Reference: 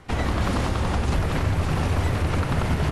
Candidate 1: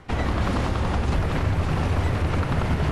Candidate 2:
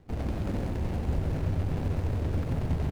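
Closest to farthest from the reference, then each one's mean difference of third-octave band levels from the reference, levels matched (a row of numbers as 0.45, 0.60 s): 1, 2; 1.5, 6.0 dB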